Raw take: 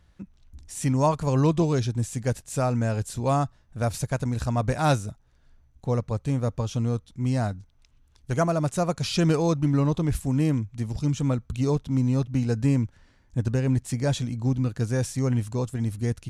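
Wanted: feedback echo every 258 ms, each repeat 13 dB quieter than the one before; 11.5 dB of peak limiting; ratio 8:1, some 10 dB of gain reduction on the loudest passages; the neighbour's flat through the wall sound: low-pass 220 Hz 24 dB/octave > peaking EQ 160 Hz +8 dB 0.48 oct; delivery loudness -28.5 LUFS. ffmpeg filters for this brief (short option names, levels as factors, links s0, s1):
-af "acompressor=threshold=0.0398:ratio=8,alimiter=level_in=2:limit=0.0631:level=0:latency=1,volume=0.501,lowpass=f=220:w=0.5412,lowpass=f=220:w=1.3066,equalizer=f=160:t=o:w=0.48:g=8,aecho=1:1:258|516|774:0.224|0.0493|0.0108,volume=2.82"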